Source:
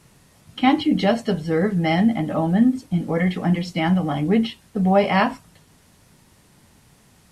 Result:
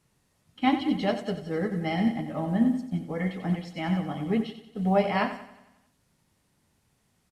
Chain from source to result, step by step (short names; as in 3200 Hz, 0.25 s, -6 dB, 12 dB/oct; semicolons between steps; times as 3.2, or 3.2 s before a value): feedback echo 91 ms, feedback 57%, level -8 dB; upward expander 1.5:1, over -33 dBFS; gain -6 dB